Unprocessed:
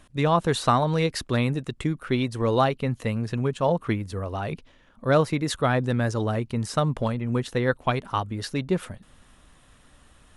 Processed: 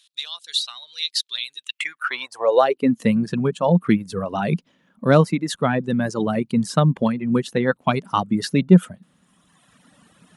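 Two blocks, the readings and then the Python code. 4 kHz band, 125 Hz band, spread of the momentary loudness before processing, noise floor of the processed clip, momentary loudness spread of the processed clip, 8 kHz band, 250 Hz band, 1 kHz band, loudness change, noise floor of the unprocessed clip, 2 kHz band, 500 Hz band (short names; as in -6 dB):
+7.5 dB, +2.5 dB, 8 LU, -67 dBFS, 11 LU, +3.0 dB, +7.0 dB, +1.5 dB, +4.5 dB, -57 dBFS, +3.0 dB, +3.5 dB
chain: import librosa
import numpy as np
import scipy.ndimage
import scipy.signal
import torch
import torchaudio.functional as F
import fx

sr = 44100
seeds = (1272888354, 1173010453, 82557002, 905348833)

y = fx.rider(x, sr, range_db=4, speed_s=0.5)
y = fx.dereverb_blind(y, sr, rt60_s=1.6)
y = fx.filter_sweep_highpass(y, sr, from_hz=3800.0, to_hz=180.0, start_s=1.56, end_s=3.08, q=3.9)
y = y * 10.0 ** (3.0 / 20.0)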